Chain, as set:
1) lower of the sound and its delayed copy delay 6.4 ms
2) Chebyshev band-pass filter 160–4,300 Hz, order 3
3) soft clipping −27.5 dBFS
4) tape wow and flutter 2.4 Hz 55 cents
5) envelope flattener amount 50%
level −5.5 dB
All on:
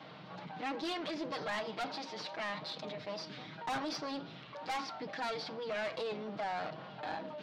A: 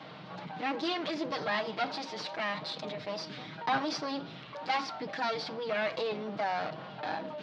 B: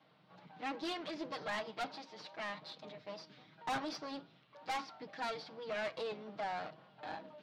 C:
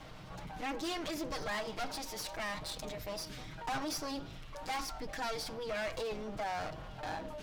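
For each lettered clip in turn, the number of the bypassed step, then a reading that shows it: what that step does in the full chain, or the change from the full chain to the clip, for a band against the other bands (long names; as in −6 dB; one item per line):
3, distortion level −9 dB
5, change in momentary loudness spread +4 LU
2, 8 kHz band +9.5 dB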